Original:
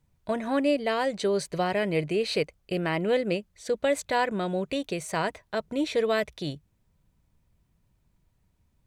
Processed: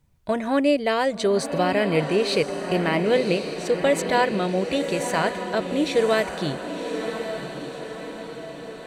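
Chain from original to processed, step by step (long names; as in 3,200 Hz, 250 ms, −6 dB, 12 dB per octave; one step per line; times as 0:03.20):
feedback delay with all-pass diffusion 1,072 ms, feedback 54%, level −7.5 dB
level +4.5 dB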